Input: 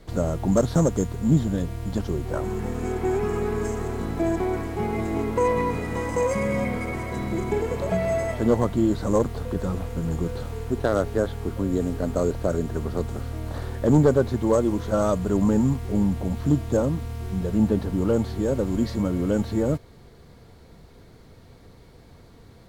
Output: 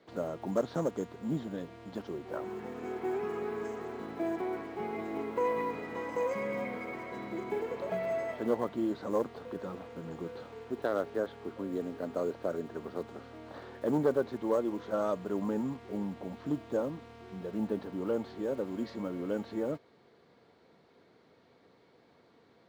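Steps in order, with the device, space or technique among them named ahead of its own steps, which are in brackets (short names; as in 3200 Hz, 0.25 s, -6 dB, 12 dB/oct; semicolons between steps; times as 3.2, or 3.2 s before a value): early digital voice recorder (BPF 270–3900 Hz; block floating point 7-bit); gain -8 dB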